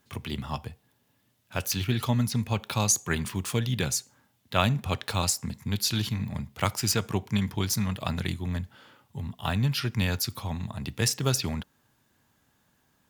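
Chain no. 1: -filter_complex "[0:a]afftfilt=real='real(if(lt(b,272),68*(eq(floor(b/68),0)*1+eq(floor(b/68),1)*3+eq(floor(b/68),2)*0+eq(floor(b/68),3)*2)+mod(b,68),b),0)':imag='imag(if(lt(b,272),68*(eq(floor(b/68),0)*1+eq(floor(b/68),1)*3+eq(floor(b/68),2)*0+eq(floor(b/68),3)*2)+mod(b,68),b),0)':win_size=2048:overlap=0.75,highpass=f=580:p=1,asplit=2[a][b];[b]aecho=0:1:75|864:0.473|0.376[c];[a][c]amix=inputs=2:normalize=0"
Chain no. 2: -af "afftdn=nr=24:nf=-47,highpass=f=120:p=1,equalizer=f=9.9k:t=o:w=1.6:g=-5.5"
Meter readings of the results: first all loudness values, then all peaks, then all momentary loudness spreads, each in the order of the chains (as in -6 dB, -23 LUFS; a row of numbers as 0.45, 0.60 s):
-25.0, -31.0 LUFS; -6.0, -7.5 dBFS; 12, 11 LU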